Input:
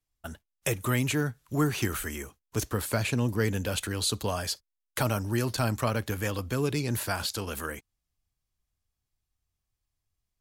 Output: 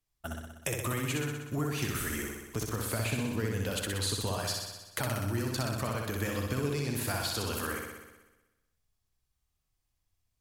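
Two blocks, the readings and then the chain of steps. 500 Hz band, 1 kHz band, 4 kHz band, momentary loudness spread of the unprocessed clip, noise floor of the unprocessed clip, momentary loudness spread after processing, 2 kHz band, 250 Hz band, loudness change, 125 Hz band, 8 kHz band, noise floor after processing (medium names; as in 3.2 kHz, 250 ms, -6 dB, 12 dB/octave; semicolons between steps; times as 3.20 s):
-4.0 dB, -3.5 dB, -2.0 dB, 9 LU, -84 dBFS, 6 LU, -2.5 dB, -4.0 dB, -3.5 dB, -3.5 dB, -2.0 dB, -81 dBFS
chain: compression, threshold -31 dBFS, peak gain reduction 10.5 dB; on a send: flutter echo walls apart 10.7 m, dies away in 1.1 s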